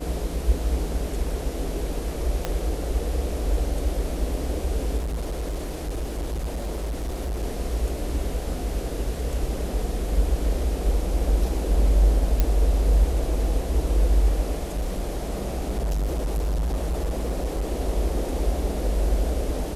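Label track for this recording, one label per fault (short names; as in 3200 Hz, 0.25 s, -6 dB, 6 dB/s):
2.450000	2.450000	pop -11 dBFS
4.970000	7.440000	clipped -24.5 dBFS
12.400000	12.400000	pop -8 dBFS
14.570000	17.650000	clipped -21.5 dBFS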